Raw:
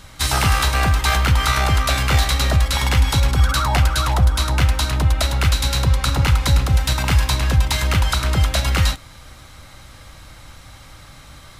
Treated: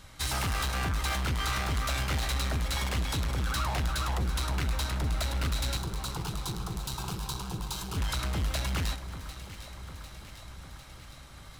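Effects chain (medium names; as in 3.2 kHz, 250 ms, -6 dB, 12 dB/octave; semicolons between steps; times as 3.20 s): hard clipper -18.5 dBFS, distortion -8 dB; 5.77–7.97 s: static phaser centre 390 Hz, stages 8; echo whose repeats swap between lows and highs 375 ms, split 1.7 kHz, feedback 80%, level -11 dB; trim -9 dB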